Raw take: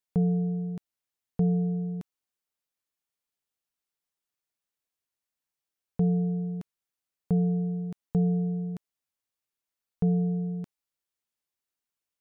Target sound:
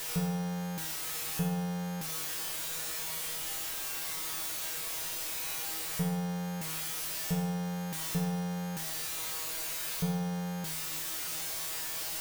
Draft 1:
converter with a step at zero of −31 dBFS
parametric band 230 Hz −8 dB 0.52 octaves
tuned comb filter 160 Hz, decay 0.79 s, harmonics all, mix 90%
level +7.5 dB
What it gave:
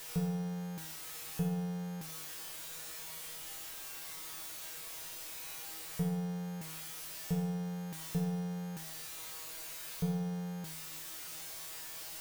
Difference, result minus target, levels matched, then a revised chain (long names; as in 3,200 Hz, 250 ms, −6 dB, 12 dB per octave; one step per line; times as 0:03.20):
converter with a step at zero: distortion −6 dB
converter with a step at zero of −22.5 dBFS
parametric band 230 Hz −8 dB 0.52 octaves
tuned comb filter 160 Hz, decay 0.79 s, harmonics all, mix 90%
level +7.5 dB